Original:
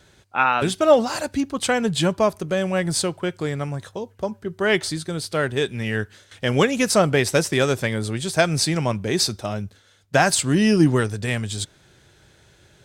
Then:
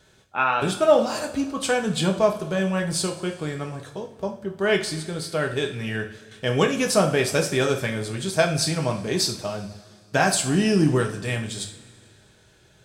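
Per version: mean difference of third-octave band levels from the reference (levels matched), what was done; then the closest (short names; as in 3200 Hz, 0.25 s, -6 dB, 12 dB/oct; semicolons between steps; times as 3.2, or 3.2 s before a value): 4.0 dB: notch 2000 Hz, Q 13; two-slope reverb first 0.42 s, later 2.3 s, from -18 dB, DRR 2.5 dB; gain -4 dB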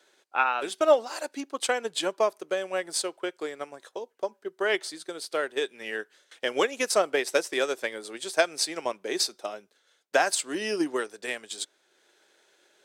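5.5 dB: HPF 340 Hz 24 dB/oct; transient shaper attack +4 dB, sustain -4 dB; gain -7 dB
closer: first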